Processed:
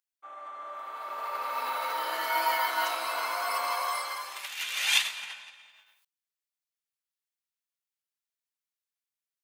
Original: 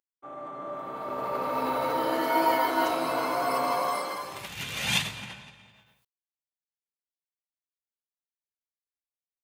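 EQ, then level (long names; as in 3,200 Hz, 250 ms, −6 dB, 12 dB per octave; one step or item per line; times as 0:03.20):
high-pass filter 1,200 Hz 12 dB per octave
+2.5 dB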